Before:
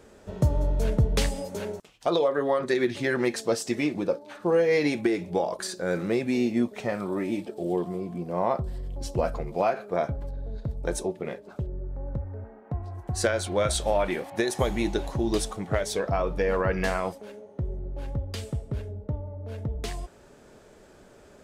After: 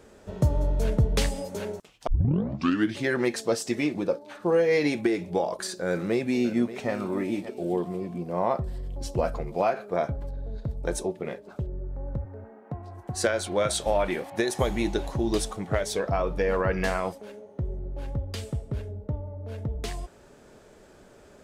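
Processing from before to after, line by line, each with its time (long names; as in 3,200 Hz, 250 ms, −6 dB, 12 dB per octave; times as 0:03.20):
0:02.07: tape start 0.90 s
0:05.86–0:06.91: delay throw 580 ms, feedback 35%, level −14 dB
0:12.25–0:13.86: high-pass filter 120 Hz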